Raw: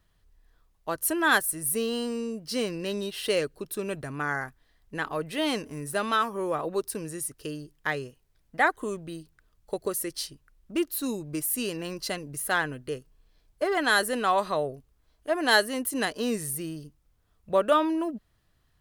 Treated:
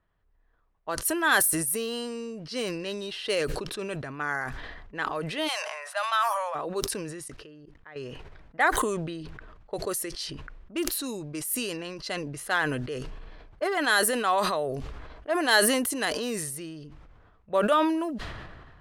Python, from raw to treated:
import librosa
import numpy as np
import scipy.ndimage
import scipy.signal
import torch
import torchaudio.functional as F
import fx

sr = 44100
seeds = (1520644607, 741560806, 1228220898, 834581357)

y = fx.steep_highpass(x, sr, hz=580.0, slope=72, at=(5.47, 6.54), fade=0.02)
y = fx.level_steps(y, sr, step_db=22, at=(7.28, 7.96))
y = fx.env_lowpass(y, sr, base_hz=1600.0, full_db=-24.5)
y = fx.low_shelf(y, sr, hz=330.0, db=-8.0)
y = fx.sustainer(y, sr, db_per_s=32.0)